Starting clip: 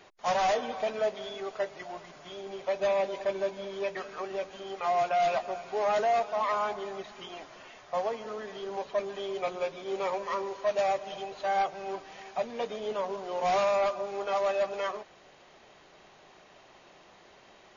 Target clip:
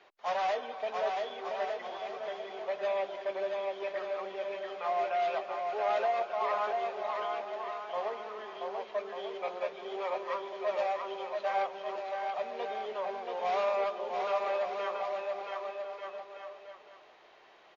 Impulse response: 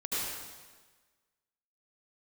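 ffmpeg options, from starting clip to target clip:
-filter_complex "[0:a]acrossover=split=340 4800:gain=0.178 1 0.1[s0][s1][s2];[s0][s1][s2]amix=inputs=3:normalize=0,asplit=2[s3][s4];[s4]aecho=0:1:680|1190|1572|1859|2075:0.631|0.398|0.251|0.158|0.1[s5];[s3][s5]amix=inputs=2:normalize=0,volume=0.631"

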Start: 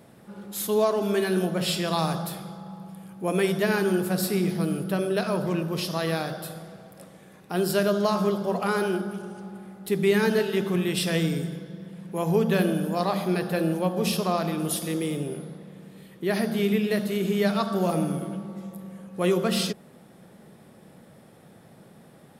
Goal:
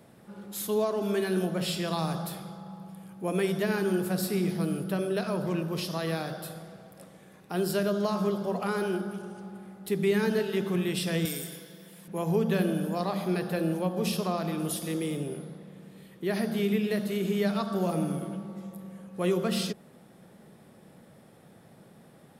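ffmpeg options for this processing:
-filter_complex "[0:a]asettb=1/sr,asplit=3[s0][s1][s2];[s0]atrim=end=11.254[s3];[s1]atrim=start=11.25:end=12.08,asetpts=PTS-STARTPTS,afade=t=in:d=0.004:c=qsin,afade=t=out:st=0.826:d=0.004:c=qsin,aemphasis=mode=production:type=riaa[s4];[s2]atrim=start=12.076[s5];[s3][s4]acrossfade=d=0.004:c1=hsin:c2=qsin[s6];[s6][s5]acrossfade=d=0.004:c1=qsin:c2=hsin,acrossover=split=420[s7][s8];[s8]acompressor=threshold=0.0282:ratio=1.5[s9];[s7][s9]amix=inputs=2:normalize=0,volume=0.708"

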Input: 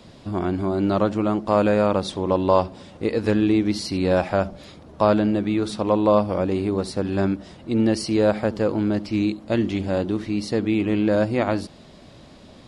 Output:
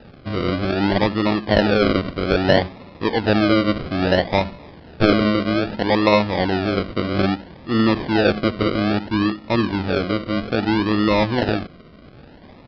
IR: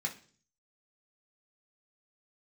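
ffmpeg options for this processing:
-af "acrusher=samples=40:mix=1:aa=0.000001:lfo=1:lforange=24:lforate=0.61,aresample=11025,aresample=44100,volume=1.33"

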